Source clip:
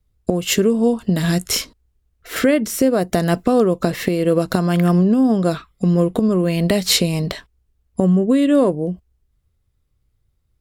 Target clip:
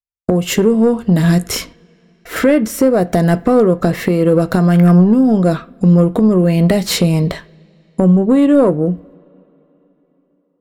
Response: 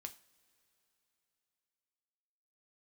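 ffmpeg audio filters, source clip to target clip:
-filter_complex "[0:a]agate=range=-47dB:threshold=-49dB:ratio=16:detection=peak,acontrast=80,asplit=2[link_01][link_02];[1:a]atrim=start_sample=2205,lowpass=2300[link_03];[link_02][link_03]afir=irnorm=-1:irlink=0,volume=5dB[link_04];[link_01][link_04]amix=inputs=2:normalize=0,volume=-6.5dB"

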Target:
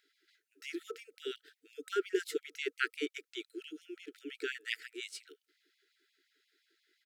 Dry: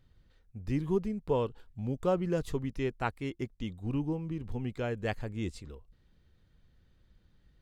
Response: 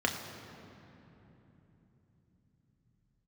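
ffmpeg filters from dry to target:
-af "afftfilt=real='re*(1-between(b*sr/4096,420,1200))':imag='im*(1-between(b*sr/4096,420,1200))':win_size=4096:overlap=0.75,asetrate=47628,aresample=44100,afftfilt=real='re*gte(b*sr/1024,260*pow(2100/260,0.5+0.5*sin(2*PI*5.7*pts/sr)))':imag='im*gte(b*sr/1024,260*pow(2100/260,0.5+0.5*sin(2*PI*5.7*pts/sr)))':win_size=1024:overlap=0.75,volume=5dB"

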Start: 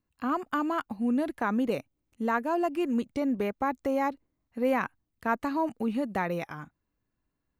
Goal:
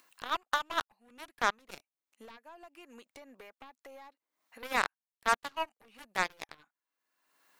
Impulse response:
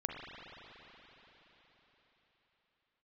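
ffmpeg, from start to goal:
-filter_complex "[0:a]highpass=850,asettb=1/sr,asplit=3[link_01][link_02][link_03];[link_01]atrim=end=2.254[link_04];[link_02]atrim=start=2.25:end=4.63,asetpts=PTS-STARTPTS,afade=type=in:duration=0.004:curve=qsin,afade=type=out:start_time=2.376:duration=0.004:curve=qsin,acompressor=threshold=-50dB:ratio=3[link_05];[link_03]atrim=start=4.626[link_06];[link_04][link_05]acrossfade=duration=0.004:curve1=hsin:curve2=qsin[link_07];[link_07][link_06]acrossfade=duration=0.004:curve1=qsin:curve2=hsin,aeval=exprs='0.15*(cos(1*acos(clip(val(0)/0.15,-1,1)))-cos(1*PI/2))+0.0075*(cos(4*acos(clip(val(0)/0.15,-1,1)))-cos(4*PI/2))+0.0237*(cos(7*acos(clip(val(0)/0.15,-1,1)))-cos(7*PI/2))':channel_layout=same,acompressor=mode=upward:threshold=-41dB:ratio=2.5,volume=3.5dB"

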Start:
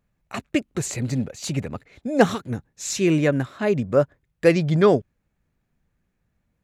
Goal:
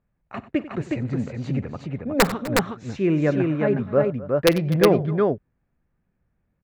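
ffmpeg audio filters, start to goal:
ffmpeg -i in.wav -af "lowpass=1900,aeval=exprs='(mod(1.78*val(0)+1,2)-1)/1.78':channel_layout=same,aecho=1:1:47|94|251|365:0.106|0.15|0.112|0.708,volume=-1.5dB" out.wav

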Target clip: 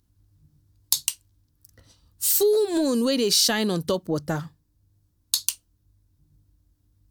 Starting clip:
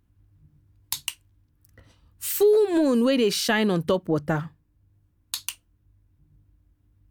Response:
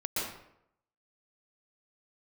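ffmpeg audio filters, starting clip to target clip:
-af "highshelf=frequency=3400:width_type=q:width=1.5:gain=9,volume=-2dB"

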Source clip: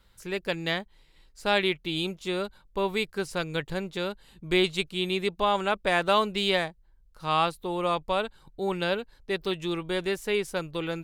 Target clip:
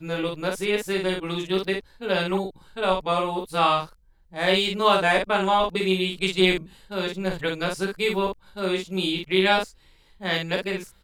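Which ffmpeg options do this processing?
ffmpeg -i in.wav -af "areverse,aecho=1:1:16|53:0.631|0.668,volume=1.5dB" out.wav

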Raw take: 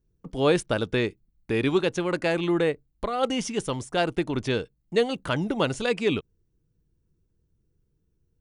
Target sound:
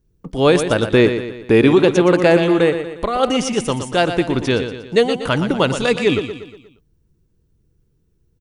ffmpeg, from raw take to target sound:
ffmpeg -i in.wav -filter_complex "[0:a]asettb=1/sr,asplit=3[link_01][link_02][link_03];[link_01]atrim=end=0.934[link_04];[link_02]atrim=start=0.93:end=2.37,asetpts=PTS-STARTPTS,afade=type=in:duration=0.004:curve=qsin,afade=type=out:start_time=1.436:duration=0.004:curve=qsin,equalizer=frequency=440:width=0.36:gain=6[link_05];[link_03]atrim=start=2.366[link_06];[link_04][link_05]acrossfade=duration=0.004:curve1=hsin:curve2=qsin[link_07];[link_07][link_06]acrossfade=duration=0.004:curve1=qsin:curve2=hsin,aecho=1:1:119|238|357|476|595:0.335|0.161|0.0772|0.037|0.0178,alimiter=level_in=9dB:limit=-1dB:release=50:level=0:latency=1,volume=-1dB" out.wav

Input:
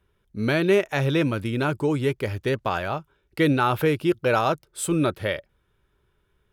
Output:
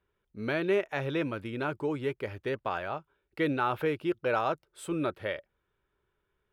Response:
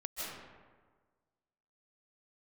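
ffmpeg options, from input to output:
-af "bass=frequency=250:gain=-7,treble=frequency=4000:gain=-11,volume=-6.5dB"

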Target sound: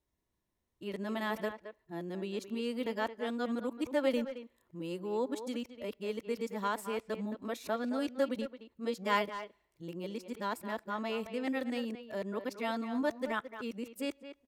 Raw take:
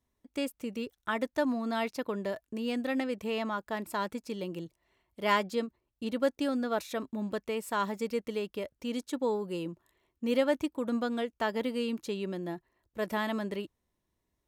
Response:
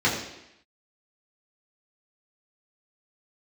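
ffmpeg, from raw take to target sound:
-filter_complex "[0:a]areverse,asplit=2[link_01][link_02];[link_02]adelay=220,highpass=300,lowpass=3400,asoftclip=type=hard:threshold=-21.5dB,volume=-10dB[link_03];[link_01][link_03]amix=inputs=2:normalize=0,asplit=2[link_04][link_05];[1:a]atrim=start_sample=2205,lowshelf=frequency=440:gain=-11.5[link_06];[link_05][link_06]afir=irnorm=-1:irlink=0,volume=-39dB[link_07];[link_04][link_07]amix=inputs=2:normalize=0,volume=-3.5dB"

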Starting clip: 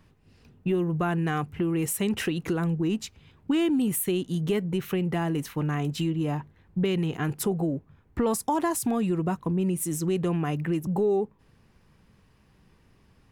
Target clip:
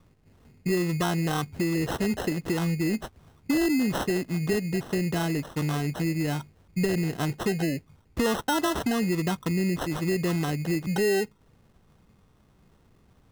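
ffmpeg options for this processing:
ffmpeg -i in.wav -af "acrusher=samples=19:mix=1:aa=0.000001" out.wav

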